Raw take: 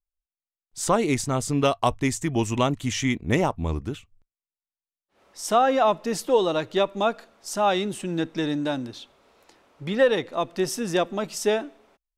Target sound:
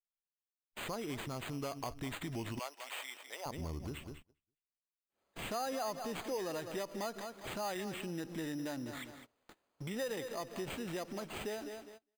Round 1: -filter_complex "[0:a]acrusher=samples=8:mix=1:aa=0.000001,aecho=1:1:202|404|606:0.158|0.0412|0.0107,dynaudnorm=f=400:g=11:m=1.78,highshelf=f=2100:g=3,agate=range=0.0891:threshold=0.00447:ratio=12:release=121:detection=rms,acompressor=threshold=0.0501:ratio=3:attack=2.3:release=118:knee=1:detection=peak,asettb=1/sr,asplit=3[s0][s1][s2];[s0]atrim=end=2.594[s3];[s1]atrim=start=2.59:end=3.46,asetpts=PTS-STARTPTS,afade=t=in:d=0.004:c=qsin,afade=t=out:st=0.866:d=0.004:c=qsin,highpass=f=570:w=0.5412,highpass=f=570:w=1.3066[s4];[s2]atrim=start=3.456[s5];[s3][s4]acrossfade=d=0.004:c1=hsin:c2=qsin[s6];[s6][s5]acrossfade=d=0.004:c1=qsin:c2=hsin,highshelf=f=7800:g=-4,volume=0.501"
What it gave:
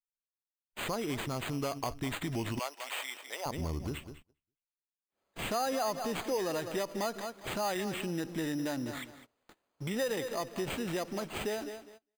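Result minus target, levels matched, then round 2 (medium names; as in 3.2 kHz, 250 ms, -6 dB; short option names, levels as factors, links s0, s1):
compression: peak gain reduction -5.5 dB
-filter_complex "[0:a]acrusher=samples=8:mix=1:aa=0.000001,aecho=1:1:202|404|606:0.158|0.0412|0.0107,dynaudnorm=f=400:g=11:m=1.78,highshelf=f=2100:g=3,agate=range=0.0891:threshold=0.00447:ratio=12:release=121:detection=rms,acompressor=threshold=0.0188:ratio=3:attack=2.3:release=118:knee=1:detection=peak,asettb=1/sr,asplit=3[s0][s1][s2];[s0]atrim=end=2.594[s3];[s1]atrim=start=2.59:end=3.46,asetpts=PTS-STARTPTS,afade=t=in:d=0.004:c=qsin,afade=t=out:st=0.866:d=0.004:c=qsin,highpass=f=570:w=0.5412,highpass=f=570:w=1.3066[s4];[s2]atrim=start=3.456[s5];[s3][s4]acrossfade=d=0.004:c1=hsin:c2=qsin[s6];[s6][s5]acrossfade=d=0.004:c1=qsin:c2=hsin,highshelf=f=7800:g=-4,volume=0.501"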